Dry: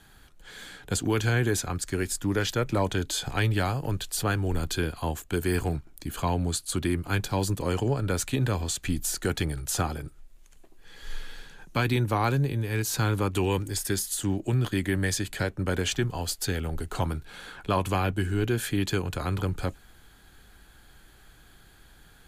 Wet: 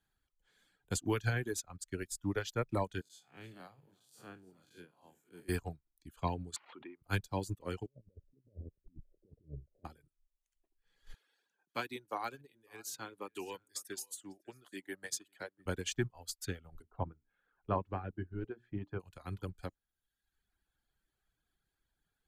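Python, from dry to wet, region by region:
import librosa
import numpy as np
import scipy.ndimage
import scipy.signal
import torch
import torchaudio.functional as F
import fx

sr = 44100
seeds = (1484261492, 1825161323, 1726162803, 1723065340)

y = fx.chain(x, sr, fx.spec_blur(span_ms=142.0),
    fx.highpass(hz=140.0, slope=24),
    fx.echo_single(ms=306, db=-12.0), at=(3.01, 5.49))
y = fx.chain(y, sr, fx.cvsd(bps=64000),
    fx.cabinet(low_hz=350.0, low_slope=12, high_hz=2600.0, hz=(550.0, 920.0, 1700.0), db=(-4, 8, -5)),
    fx.pre_swell(db_per_s=25.0), at=(6.56, 7.02))
y = fx.chain(y, sr, fx.cheby1_lowpass(hz=600.0, order=6),
    fx.over_compress(threshold_db=-32.0, ratio=-0.5), at=(7.86, 9.85))
y = fx.chain(y, sr, fx.highpass(hz=300.0, slope=12),
    fx.echo_single(ms=549, db=-14.0), at=(11.14, 15.66))
y = fx.chain(y, sr, fx.lowpass(hz=1300.0, slope=12),
    fx.hum_notches(base_hz=60, count=7), at=(16.82, 19.0))
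y = fx.dereverb_blind(y, sr, rt60_s=1.3)
y = fx.dynamic_eq(y, sr, hz=6600.0, q=2.2, threshold_db=-42.0, ratio=4.0, max_db=3)
y = fx.upward_expand(y, sr, threshold_db=-38.0, expansion=2.5)
y = y * librosa.db_to_amplitude(-4.5)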